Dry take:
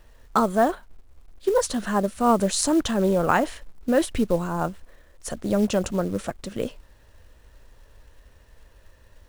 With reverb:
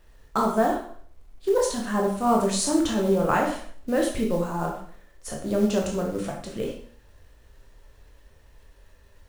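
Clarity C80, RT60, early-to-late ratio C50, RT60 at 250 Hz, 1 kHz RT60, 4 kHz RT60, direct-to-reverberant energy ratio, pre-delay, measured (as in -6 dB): 8.5 dB, 0.55 s, 5.0 dB, 0.55 s, 0.55 s, 0.50 s, -1.0 dB, 7 ms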